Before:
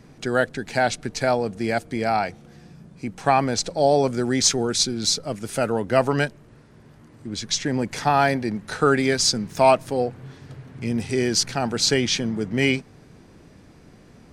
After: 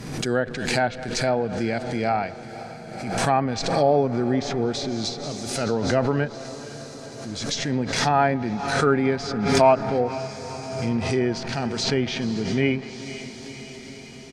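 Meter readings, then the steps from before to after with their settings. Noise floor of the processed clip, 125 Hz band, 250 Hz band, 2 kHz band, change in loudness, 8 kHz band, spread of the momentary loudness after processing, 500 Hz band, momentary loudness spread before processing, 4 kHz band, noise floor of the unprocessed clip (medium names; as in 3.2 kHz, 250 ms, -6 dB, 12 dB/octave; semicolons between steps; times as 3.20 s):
-39 dBFS, +1.5 dB, +0.5 dB, -2.0 dB, -1.5 dB, -8.0 dB, 17 LU, -0.5 dB, 10 LU, -4.5 dB, -50 dBFS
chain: speakerphone echo 210 ms, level -21 dB; harmonic-percussive split percussive -8 dB; treble shelf 3.1 kHz +6.5 dB; on a send: echo that smears into a reverb 496 ms, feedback 71%, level -15 dB; on the sum: low-pass that closes with the level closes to 1.9 kHz, closed at -17.5 dBFS; swell ahead of each attack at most 46 dB/s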